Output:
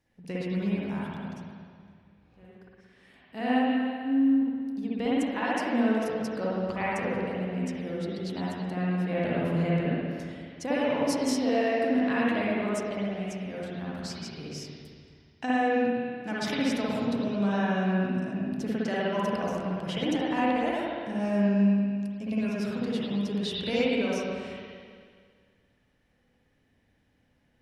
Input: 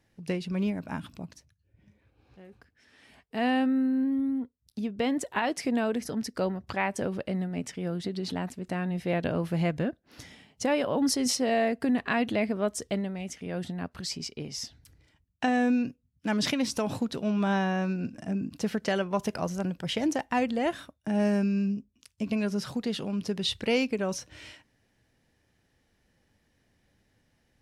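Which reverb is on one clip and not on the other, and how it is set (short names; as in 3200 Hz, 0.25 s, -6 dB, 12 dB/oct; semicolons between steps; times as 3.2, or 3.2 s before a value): spring tank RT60 2 s, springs 55/59 ms, chirp 55 ms, DRR -7 dB; gain -7 dB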